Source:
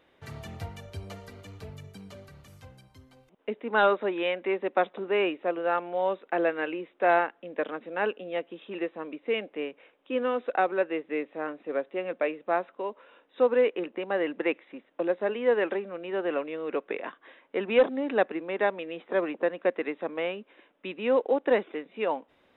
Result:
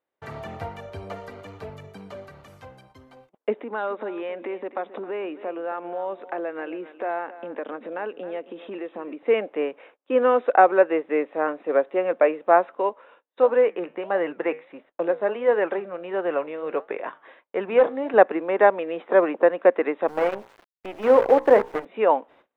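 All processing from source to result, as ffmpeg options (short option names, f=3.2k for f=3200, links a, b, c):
-filter_complex "[0:a]asettb=1/sr,asplit=3[a][b][c];[a]atrim=end=3.584[d];[b]atrim=start=3.58:end=9.23,asetpts=PTS-STARTPTS,afade=t=in:d=0.004:c=qsin,afade=t=out:st=5.646:d=0.004:c=qsin,equalizer=f=260:w=1.6:g=6,acompressor=threshold=-40dB:ratio=3:attack=3.2:release=140:knee=1:detection=peak,aecho=1:1:267:0.178,atrim=end_sample=249165[e];[c]atrim=start=9.226[f];[d][e]acrossfade=d=0.004:c1=hsin:c2=qsin[g];[g][f]acrossfade=d=0.004:c1=qsin:c2=hsin,asettb=1/sr,asplit=3[h][i][j];[h]atrim=end=12.894[k];[i]atrim=start=12.89:end=18.14,asetpts=PTS-STARTPTS,afade=t=in:d=0.004:c=qsin,afade=t=out:st=5.246:d=0.004:c=qsin,flanger=delay=5.2:depth=4.3:regen=-82:speed=1.5:shape=sinusoidal,lowshelf=f=180:t=q:w=1.5:g=6[l];[j]atrim=start=18.136[m];[k][l]acrossfade=d=0.004:c1=hsin:c2=qsin[n];[n][m]acrossfade=d=0.004:c1=qsin:c2=hsin,asettb=1/sr,asplit=3[o][p][q];[o]atrim=end=20.084[r];[p]atrim=start=20.08:end=21.85,asetpts=PTS-STARTPTS,afade=t=in:d=0.004:c=qsin,afade=t=out:st=1.766:d=0.004:c=qsin,highshelf=f=3.4k:g=-11,bandreject=f=60:t=h:w=6,bandreject=f=120:t=h:w=6,bandreject=f=180:t=h:w=6,bandreject=f=240:t=h:w=6,bandreject=f=300:t=h:w=6,bandreject=f=360:t=h:w=6,bandreject=f=420:t=h:w=6,bandreject=f=480:t=h:w=6,bandreject=f=540:t=h:w=6,acrusher=bits=6:dc=4:mix=0:aa=0.000001[s];[q]atrim=start=21.846[t];[r][s]acrossfade=d=0.004:c1=hsin:c2=qsin[u];[u][t]acrossfade=d=0.004:c1=qsin:c2=hsin,acrossover=split=2500[v][w];[w]acompressor=threshold=-51dB:ratio=4:attack=1:release=60[x];[v][x]amix=inputs=2:normalize=0,agate=range=-30dB:threshold=-59dB:ratio=16:detection=peak,equalizer=f=810:w=0.33:g=13.5,volume=-2.5dB"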